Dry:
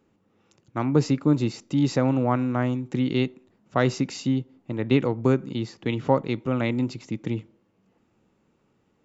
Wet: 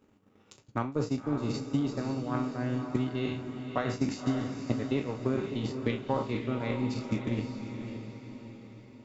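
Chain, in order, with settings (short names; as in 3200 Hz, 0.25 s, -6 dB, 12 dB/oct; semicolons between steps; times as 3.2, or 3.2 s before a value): spectral trails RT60 0.56 s; reverse; compressor 10:1, threshold -30 dBFS, peak gain reduction 17.5 dB; reverse; notch comb 170 Hz; transient shaper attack +11 dB, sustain -10 dB; diffused feedback echo 0.554 s, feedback 49%, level -7 dB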